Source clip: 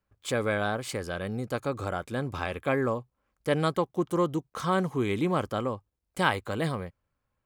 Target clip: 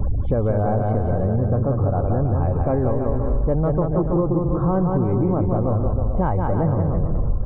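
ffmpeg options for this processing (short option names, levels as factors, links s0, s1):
-filter_complex "[0:a]aeval=exprs='val(0)+0.5*0.0335*sgn(val(0))':c=same,aemphasis=mode=reproduction:type=bsi,afftfilt=real='re*gte(hypot(re,im),0.0282)':imag='im*gte(hypot(re,im),0.0282)':win_size=1024:overlap=0.75,lowshelf=f=70:g=7,asplit=2[s0][s1];[s1]aecho=0:1:180|324|439.2|531.4|605.1:0.631|0.398|0.251|0.158|0.1[s2];[s0][s2]amix=inputs=2:normalize=0,aeval=exprs='0.596*(cos(1*acos(clip(val(0)/0.596,-1,1)))-cos(1*PI/2))+0.00422*(cos(8*acos(clip(val(0)/0.596,-1,1)))-cos(8*PI/2))':c=same,lowpass=f=780:t=q:w=1.8,acompressor=threshold=0.1:ratio=6,volume=1.58"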